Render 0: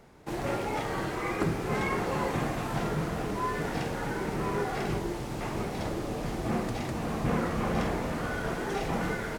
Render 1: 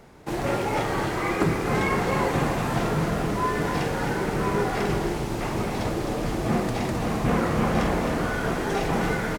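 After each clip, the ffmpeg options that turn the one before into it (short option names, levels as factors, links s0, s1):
-af "aecho=1:1:263:0.422,volume=1.88"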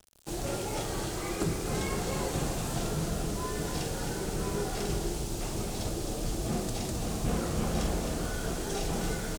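-af "aeval=exprs='val(0)*gte(abs(val(0)),0.0075)':c=same,equalizer=f=125:t=o:w=1:g=-6,equalizer=f=250:t=o:w=1:g=-7,equalizer=f=500:t=o:w=1:g=-5,equalizer=f=1000:t=o:w=1:g=-10,equalizer=f=2000:t=o:w=1:g=-12,equalizer=f=8000:t=o:w=1:g=5"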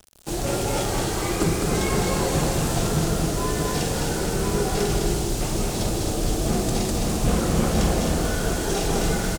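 -af "aecho=1:1:207:0.562,volume=2.51"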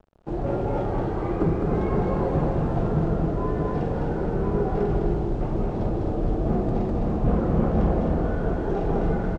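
-af "lowpass=1000"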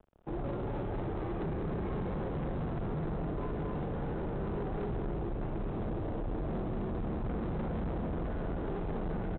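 -filter_complex "[0:a]acrossover=split=370|3000[s0][s1][s2];[s1]acompressor=threshold=0.0251:ratio=6[s3];[s0][s3][s2]amix=inputs=3:normalize=0,aresample=8000,asoftclip=type=hard:threshold=0.0447,aresample=44100,volume=0.531"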